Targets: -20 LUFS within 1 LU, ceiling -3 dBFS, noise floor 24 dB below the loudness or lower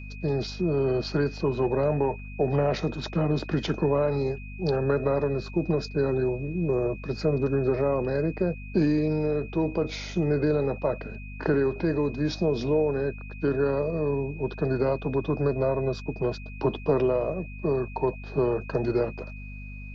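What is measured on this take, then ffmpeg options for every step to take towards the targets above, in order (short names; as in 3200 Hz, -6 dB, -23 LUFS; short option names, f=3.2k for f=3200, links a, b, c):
hum 50 Hz; harmonics up to 250 Hz; hum level -37 dBFS; steady tone 2500 Hz; tone level -45 dBFS; loudness -27.0 LUFS; peak -12.0 dBFS; loudness target -20.0 LUFS
-> -af "bandreject=f=50:t=h:w=4,bandreject=f=100:t=h:w=4,bandreject=f=150:t=h:w=4,bandreject=f=200:t=h:w=4,bandreject=f=250:t=h:w=4"
-af "bandreject=f=2.5k:w=30"
-af "volume=7dB"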